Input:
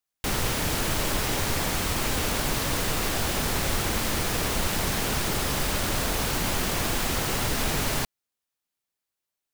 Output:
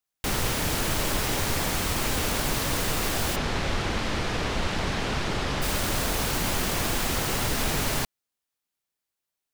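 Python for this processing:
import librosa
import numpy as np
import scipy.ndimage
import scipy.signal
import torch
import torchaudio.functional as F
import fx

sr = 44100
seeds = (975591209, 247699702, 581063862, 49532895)

y = fx.lowpass(x, sr, hz=4400.0, slope=12, at=(3.35, 5.61), fade=0.02)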